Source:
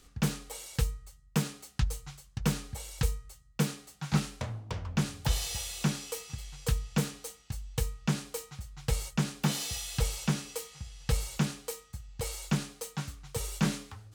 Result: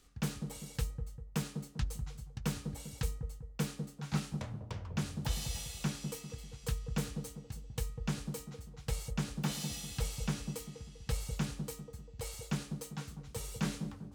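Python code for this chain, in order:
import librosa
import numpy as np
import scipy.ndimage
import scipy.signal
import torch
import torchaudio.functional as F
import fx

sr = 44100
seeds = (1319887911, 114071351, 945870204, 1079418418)

y = fx.echo_wet_lowpass(x, sr, ms=197, feedback_pct=41, hz=570.0, wet_db=-5)
y = y * librosa.db_to_amplitude(-6.5)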